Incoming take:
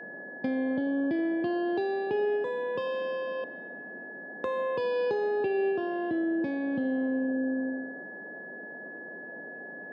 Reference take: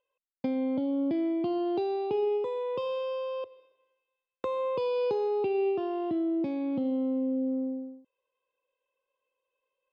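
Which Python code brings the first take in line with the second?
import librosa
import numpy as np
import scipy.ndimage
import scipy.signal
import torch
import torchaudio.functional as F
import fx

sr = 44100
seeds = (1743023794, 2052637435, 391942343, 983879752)

y = fx.notch(x, sr, hz=1700.0, q=30.0)
y = fx.noise_reduce(y, sr, print_start_s=3.8, print_end_s=4.3, reduce_db=30.0)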